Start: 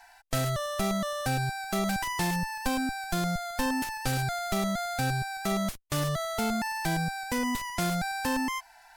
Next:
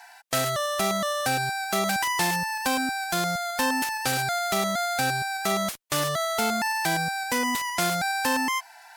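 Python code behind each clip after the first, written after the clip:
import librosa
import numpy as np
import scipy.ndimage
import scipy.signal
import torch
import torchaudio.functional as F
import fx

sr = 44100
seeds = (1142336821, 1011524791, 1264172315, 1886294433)

y = fx.highpass(x, sr, hz=500.0, slope=6)
y = y * 10.0 ** (7.0 / 20.0)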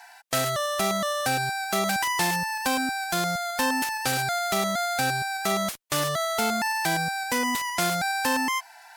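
y = x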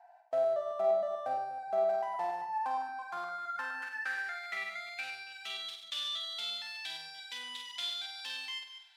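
y = fx.reverse_delay(x, sr, ms=144, wet_db=-10)
y = fx.filter_sweep_bandpass(y, sr, from_hz=650.0, to_hz=3400.0, start_s=1.94, end_s=5.74, q=6.9)
y = fx.room_flutter(y, sr, wall_m=8.3, rt60_s=0.48)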